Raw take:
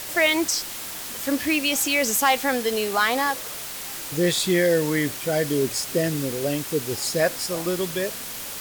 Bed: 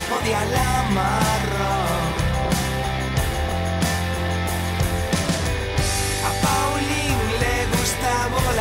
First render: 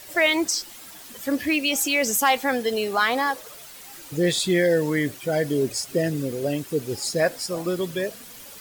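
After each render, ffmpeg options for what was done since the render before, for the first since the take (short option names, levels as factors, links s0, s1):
-af "afftdn=nr=11:nf=-34"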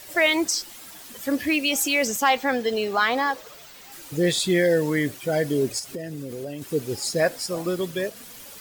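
-filter_complex "[0:a]asettb=1/sr,asplit=3[s0][s1][s2];[s0]atrim=end=2.074[s3];[s1]atrim=start=2.07:end=3.92,asetpts=PTS-STARTPTS,afade=t=in:d=0.004:c=qsin,afade=t=out:st=1.846:d=0.004:c=qsin,equalizer=f=11000:t=o:w=0.75:g=-11.5[s4];[s2]atrim=start=3.916[s5];[s3][s4]acrossfade=d=0.004:c1=hsin:c2=qsin[s6];[s6][s5]acrossfade=d=0.004:c1=qsin:c2=hsin,asettb=1/sr,asplit=3[s7][s8][s9];[s7]atrim=end=5.794[s10];[s8]atrim=start=5.79:end=6.62,asetpts=PTS-STARTPTS,afade=t=in:d=0.004:c=qsin,afade=t=out:st=0.826:d=0.004:c=qsin,acompressor=threshold=0.0316:ratio=5:attack=3.2:release=140:knee=1:detection=peak[s11];[s9]atrim=start=6.616[s12];[s10][s11]acrossfade=d=0.004:c1=hsin:c2=qsin[s13];[s13][s12]acrossfade=d=0.004:c1=qsin:c2=hsin,asettb=1/sr,asplit=3[s14][s15][s16];[s14]atrim=end=7.674[s17];[s15]atrim=start=7.67:end=8.16,asetpts=PTS-STARTPTS,afade=t=in:d=0.004:c=qsin,afade=t=out:st=0.486:d=0.004:c=qsin,aeval=exprs='sgn(val(0))*max(abs(val(0))-0.00335,0)':c=same[s18];[s16]atrim=start=8.156[s19];[s17][s18]acrossfade=d=0.004:c1=hsin:c2=qsin[s20];[s20][s19]acrossfade=d=0.004:c1=qsin:c2=hsin"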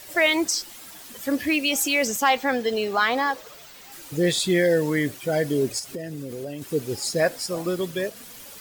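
-af anull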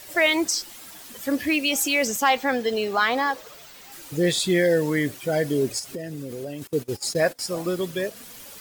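-filter_complex "[0:a]asettb=1/sr,asplit=3[s0][s1][s2];[s0]atrim=end=6.674[s3];[s1]atrim=start=6.67:end=7.39,asetpts=PTS-STARTPTS,afade=t=in:d=0.004:c=qsin,afade=t=out:st=0.716:d=0.004:c=qsin,agate=range=0.0891:threshold=0.0224:ratio=16:release=100:detection=peak[s4];[s2]atrim=start=7.386[s5];[s3][s4]acrossfade=d=0.004:c1=hsin:c2=qsin[s6];[s6][s5]acrossfade=d=0.004:c1=qsin:c2=hsin"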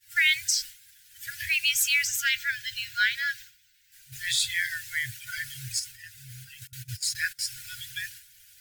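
-af "agate=range=0.0224:threshold=0.0224:ratio=3:detection=peak,afftfilt=real='re*(1-between(b*sr/4096,130,1400))':imag='im*(1-between(b*sr/4096,130,1400))':win_size=4096:overlap=0.75"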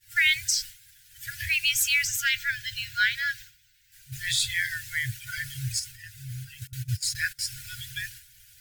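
-af "lowshelf=f=420:g=10"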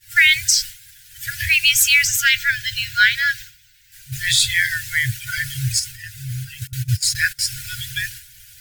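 -af "volume=2.99,alimiter=limit=0.794:level=0:latency=1"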